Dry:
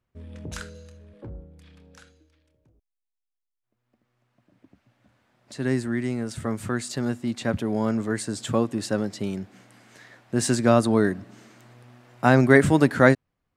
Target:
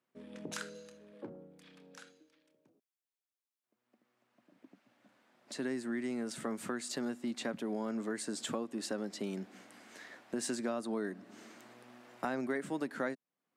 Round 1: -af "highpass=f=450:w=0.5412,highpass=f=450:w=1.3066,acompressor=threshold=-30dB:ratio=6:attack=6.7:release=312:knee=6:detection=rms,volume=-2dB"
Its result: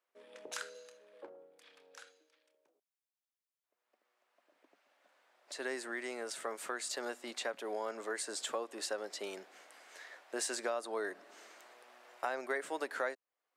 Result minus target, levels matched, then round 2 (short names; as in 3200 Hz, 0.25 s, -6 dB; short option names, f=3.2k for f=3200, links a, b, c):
250 Hz band -11.0 dB
-af "highpass=f=200:w=0.5412,highpass=f=200:w=1.3066,acompressor=threshold=-30dB:ratio=6:attack=6.7:release=312:knee=6:detection=rms,volume=-2dB"